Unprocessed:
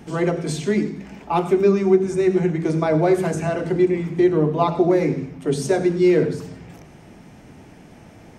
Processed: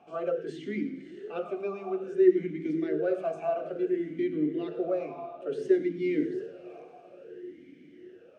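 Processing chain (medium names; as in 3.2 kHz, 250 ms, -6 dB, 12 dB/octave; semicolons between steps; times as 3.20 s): on a send: echo that smears into a reverb 613 ms, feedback 47%, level -14.5 dB; on the sum: talking filter a-i 0.58 Hz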